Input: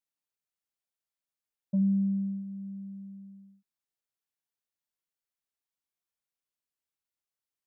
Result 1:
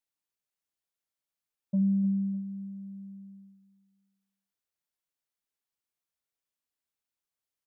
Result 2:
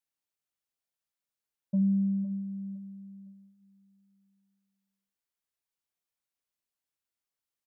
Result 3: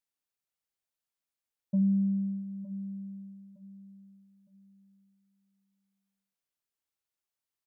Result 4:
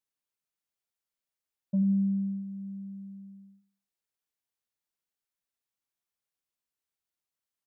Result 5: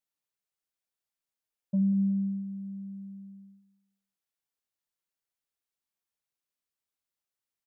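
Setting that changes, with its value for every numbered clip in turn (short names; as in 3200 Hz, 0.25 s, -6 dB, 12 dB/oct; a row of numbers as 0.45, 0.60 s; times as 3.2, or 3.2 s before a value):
feedback echo, time: 302, 509, 912, 91, 183 ms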